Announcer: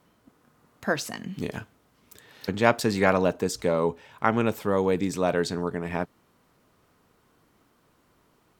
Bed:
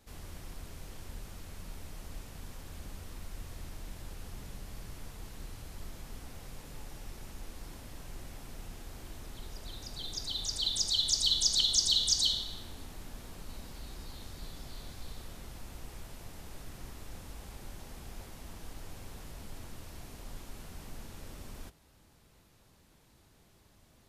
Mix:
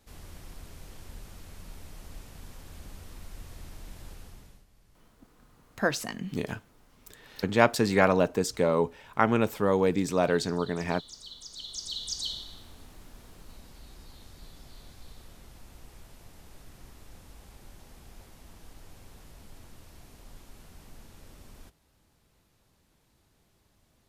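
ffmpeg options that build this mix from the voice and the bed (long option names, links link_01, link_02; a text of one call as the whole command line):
ffmpeg -i stem1.wav -i stem2.wav -filter_complex "[0:a]adelay=4950,volume=-0.5dB[link_01];[1:a]volume=13dB,afade=type=out:start_time=4.1:duration=0.56:silence=0.133352,afade=type=in:start_time=11.49:duration=0.91:silence=0.211349[link_02];[link_01][link_02]amix=inputs=2:normalize=0" out.wav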